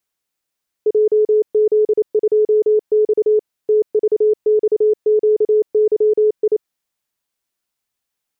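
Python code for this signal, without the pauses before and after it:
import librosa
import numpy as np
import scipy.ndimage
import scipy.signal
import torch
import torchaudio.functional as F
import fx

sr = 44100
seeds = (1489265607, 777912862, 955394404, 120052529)

y = fx.morse(sr, text='JZ2X TVXQYI', wpm=28, hz=427.0, level_db=-10.0)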